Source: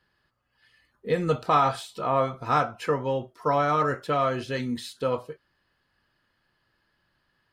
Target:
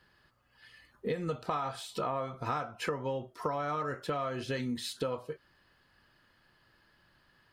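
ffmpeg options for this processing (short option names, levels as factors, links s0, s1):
-af "acompressor=threshold=0.0158:ratio=10,volume=1.78"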